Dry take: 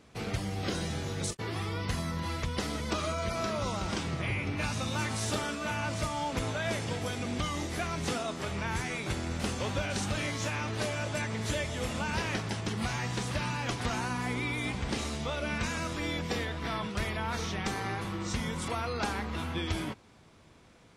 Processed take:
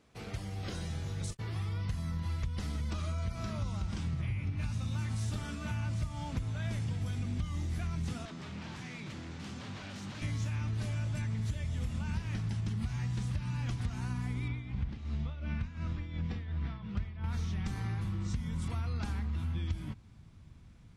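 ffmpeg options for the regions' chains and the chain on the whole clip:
ffmpeg -i in.wav -filter_complex "[0:a]asettb=1/sr,asplit=3[link_01][link_02][link_03];[link_01]atrim=end=8.254[link_04];[link_02]atrim=start=8.25:end=10.22,asetpts=PTS-STARTPTS,afade=type=in:duration=0.004:curve=qsin,afade=type=out:start_time=1.966:duration=0.004:curve=qsin,aeval=exprs='0.0251*(abs(mod(val(0)/0.0251+3,4)-2)-1)':channel_layout=same,highpass=190,lowpass=5800[link_05];[link_03]atrim=start=10.216[link_06];[link_04][link_05]acrossfade=duration=0.004:curve1=hsin:curve2=qsin[link_07];[link_07][link_06]acrossfade=duration=0.004:curve1=qsin:curve2=hsin,asettb=1/sr,asplit=3[link_08][link_09][link_10];[link_08]atrim=end=14.484[link_11];[link_09]atrim=start=14.48:end=17.24,asetpts=PTS-STARTPTS,afade=type=in:duration=0.004:curve=qsin,afade=type=out:start_time=2.756:duration=0.004:curve=qsin,lowpass=3600,tremolo=f=2.8:d=0.73[link_12];[link_10]atrim=start=17.236[link_13];[link_11][link_12]acrossfade=duration=0.004:curve1=hsin:curve2=qsin[link_14];[link_14][link_13]acrossfade=duration=0.004:curve1=qsin:curve2=hsin,asubboost=boost=9.5:cutoff=150,acompressor=threshold=-23dB:ratio=6,volume=-8dB" out.wav

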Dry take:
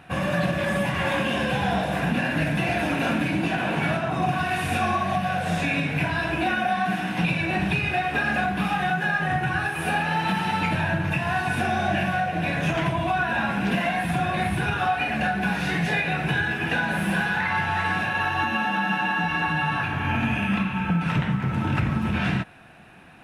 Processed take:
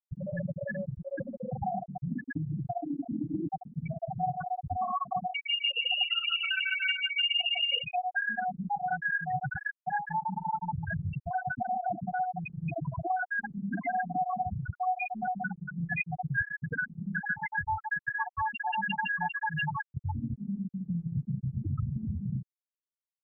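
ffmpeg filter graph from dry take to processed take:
ffmpeg -i in.wav -filter_complex "[0:a]asettb=1/sr,asplit=3[link_01][link_02][link_03];[link_01]atrim=end=5.334[link_04];[link_02]atrim=start=5.33:end=7.84,asetpts=PTS-STARTPTS,afade=type=in:duration=0.004:curve=qsin,afade=type=out:start_time=2.506:duration=0.004:curve=qsin,lowpass=frequency=2600:width_type=q:width=0.5098,lowpass=frequency=2600:width_type=q:width=0.6013,lowpass=frequency=2600:width_type=q:width=0.9,lowpass=frequency=2600:width_type=q:width=2.563,afreqshift=-3000,aecho=1:1:150|277.5|385.9|478|556.3:0.794|0.631|0.501|0.398|0.316,atrim=end_sample=110691[link_05];[link_03]atrim=start=7.836[link_06];[link_04][link_05]acrossfade=duration=0.004:curve1=hsin:curve2=qsin[link_07];[link_07][link_06]acrossfade=duration=0.004:curve1=qsin:curve2=hsin,asettb=1/sr,asplit=3[link_08][link_09][link_10];[link_08]atrim=end=10.034[link_11];[link_09]atrim=start=10.03:end=12.21,asetpts=PTS-STARTPTS,afade=type=in:duration=0.004:curve=qsin,afade=type=out:start_time=2.176:duration=0.004:curve=qsin,acrossover=split=3600[link_12][link_13];[link_13]acompressor=threshold=-55dB:ratio=4:attack=1:release=60[link_14];[link_12][link_14]amix=inputs=2:normalize=0,lowpass=frequency=5400:width_type=q:width=1.7,aecho=1:1:431:0.0944,atrim=end_sample=96138[link_15];[link_10]atrim=start=12.206[link_16];[link_11][link_15]acrossfade=duration=0.004:curve1=hsin:curve2=qsin[link_17];[link_17][link_16]acrossfade=duration=0.004:curve1=qsin:curve2=hsin,asettb=1/sr,asplit=3[link_18][link_19][link_20];[link_18]atrim=end=13.734[link_21];[link_19]atrim=start=13.73:end=14.42,asetpts=PTS-STARTPTS,afade=type=in:duration=0.004:curve=qsin,afade=type=out:start_time=0.686:duration=0.004:curve=qsin,aemphasis=mode=reproduction:type=50kf,aecho=1:1:3.8:0.87,atrim=end_sample=30429[link_22];[link_20]atrim=start=14.416[link_23];[link_21][link_22]acrossfade=duration=0.004:curve1=hsin:curve2=qsin[link_24];[link_24][link_23]acrossfade=duration=0.004:curve1=qsin:curve2=hsin,asettb=1/sr,asplit=3[link_25][link_26][link_27];[link_25]atrim=end=15.914[link_28];[link_26]atrim=start=15.91:end=19.8,asetpts=PTS-STARTPTS,afade=type=in:duration=0.004:curve=qsin,afade=type=out:start_time=3.886:duration=0.004:curve=qsin,aphaser=in_gain=1:out_gain=1:delay=1.7:decay=0.34:speed=1.3:type=triangular,aeval=exprs='val(0)+0.00794*(sin(2*PI*50*n/s)+sin(2*PI*2*50*n/s)/2+sin(2*PI*3*50*n/s)/3+sin(2*PI*4*50*n/s)/4+sin(2*PI*5*50*n/s)/5)':channel_layout=same[link_29];[link_27]atrim=start=19.796[link_30];[link_28][link_29]acrossfade=duration=0.004:curve1=hsin:curve2=qsin[link_31];[link_31][link_30]acrossfade=duration=0.004:curve1=qsin:curve2=hsin,afftfilt=real='re*gte(hypot(re,im),0.398)':imag='im*gte(hypot(re,im),0.398)':win_size=1024:overlap=0.75,aecho=1:1:2.5:0.53,acompressor=threshold=-32dB:ratio=2" out.wav

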